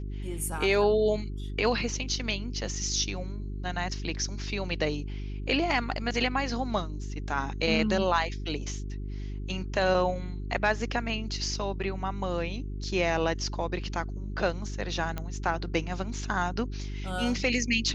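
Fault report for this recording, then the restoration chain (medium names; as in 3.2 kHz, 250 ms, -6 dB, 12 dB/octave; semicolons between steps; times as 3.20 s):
hum 50 Hz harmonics 8 -35 dBFS
15.18 s: pop -19 dBFS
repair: de-click; de-hum 50 Hz, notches 8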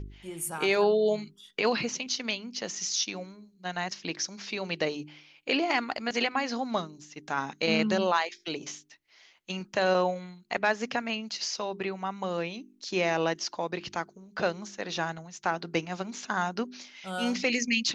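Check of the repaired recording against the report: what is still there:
nothing left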